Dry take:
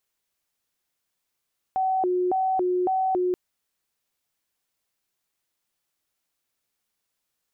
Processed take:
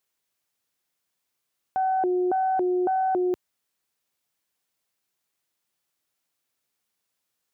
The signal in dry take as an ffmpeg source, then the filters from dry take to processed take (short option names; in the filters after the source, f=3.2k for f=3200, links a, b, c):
-f lavfi -i "aevalsrc='0.0944*sin(2*PI*(559.5*t+197.5/1.8*(0.5-abs(mod(1.8*t,1)-0.5))))':d=1.58:s=44100"
-af "aeval=exprs='0.1*(cos(1*acos(clip(val(0)/0.1,-1,1)))-cos(1*PI/2))+0.01*(cos(2*acos(clip(val(0)/0.1,-1,1)))-cos(2*PI/2))':c=same,highpass=78"